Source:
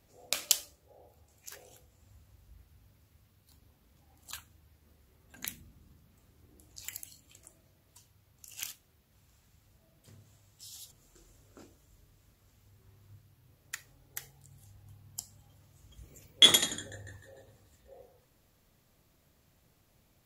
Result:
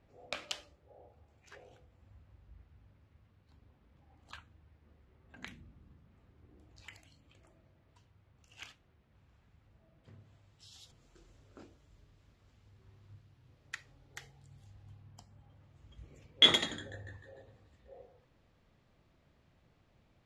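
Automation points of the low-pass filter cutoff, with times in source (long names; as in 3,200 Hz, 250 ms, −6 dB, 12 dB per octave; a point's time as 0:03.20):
0:10.12 2,400 Hz
0:10.83 4,100 Hz
0:14.90 4,100 Hz
0:15.25 1,900 Hz
0:15.94 3,200 Hz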